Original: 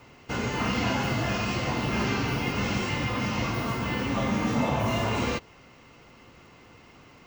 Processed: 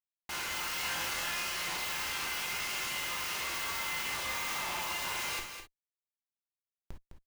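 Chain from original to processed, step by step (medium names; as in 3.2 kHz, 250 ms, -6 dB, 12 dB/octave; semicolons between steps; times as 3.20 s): high-pass 980 Hz 12 dB/octave; tilt EQ +2.5 dB/octave; Schmitt trigger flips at -40 dBFS; 0.76–1.30 s: doubling 25 ms -4.5 dB; delay 208 ms -8 dB; gated-style reverb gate 80 ms flat, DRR 2 dB; trim -6.5 dB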